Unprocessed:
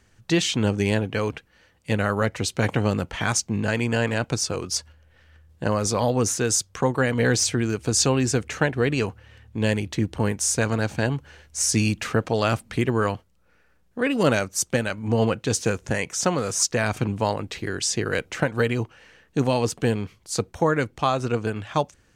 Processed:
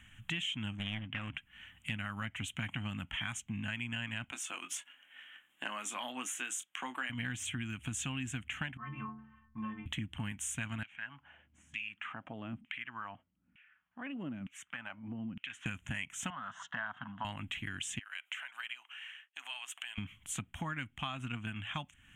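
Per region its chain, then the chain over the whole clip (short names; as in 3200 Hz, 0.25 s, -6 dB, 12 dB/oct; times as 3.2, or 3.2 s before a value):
0.77–1.34 air absorption 90 m + Doppler distortion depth 0.78 ms
4.31–7.1 HPF 330 Hz 24 dB/oct + doubler 24 ms -10 dB
8.77–9.86 expander -46 dBFS + synth low-pass 1100 Hz, resonance Q 10 + metallic resonator 65 Hz, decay 0.77 s, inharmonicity 0.03
10.83–15.66 low shelf 330 Hz +5 dB + compressor 1.5:1, threshold -32 dBFS + LFO band-pass saw down 1.1 Hz 200–2800 Hz
16.3–17.25 speaker cabinet 310–3400 Hz, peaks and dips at 330 Hz -9 dB, 700 Hz +3 dB, 1000 Hz +5 dB, 1600 Hz +6 dB + fixed phaser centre 1000 Hz, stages 4
17.99–19.98 expander -50 dBFS + compressor 2.5:1, threshold -36 dBFS + Bessel high-pass 1100 Hz, order 4
whole clip: EQ curve 270 Hz 0 dB, 450 Hz -26 dB, 660 Hz -8 dB, 3200 Hz +12 dB, 4700 Hz -26 dB, 7000 Hz -1 dB; compressor 4:1, threshold -39 dBFS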